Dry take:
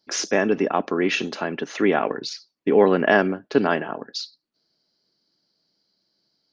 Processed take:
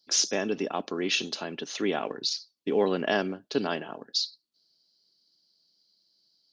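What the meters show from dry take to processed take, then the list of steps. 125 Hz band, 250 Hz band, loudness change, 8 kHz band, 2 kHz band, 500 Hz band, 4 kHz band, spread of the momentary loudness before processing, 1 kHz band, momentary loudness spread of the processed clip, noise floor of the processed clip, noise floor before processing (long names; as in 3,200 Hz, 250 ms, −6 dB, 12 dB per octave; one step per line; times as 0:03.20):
−8.5 dB, −8.5 dB, −7.0 dB, can't be measured, −9.5 dB, −8.5 dB, +2.0 dB, 13 LU, −9.5 dB, 8 LU, −76 dBFS, −78 dBFS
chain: high shelf with overshoot 2,700 Hz +9.5 dB, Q 1.5
level −8.5 dB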